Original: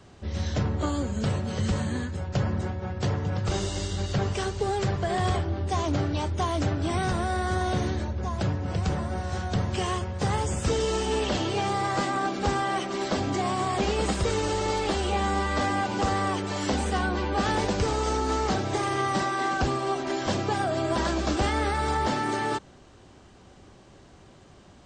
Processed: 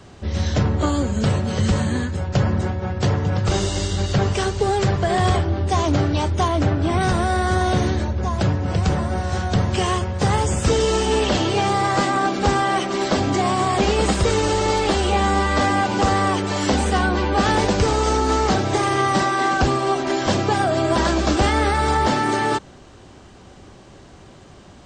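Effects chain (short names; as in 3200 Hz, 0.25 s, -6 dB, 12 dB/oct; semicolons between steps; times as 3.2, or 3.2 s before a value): 6.48–7.01 high shelf 4600 Hz -10.5 dB; gain +7.5 dB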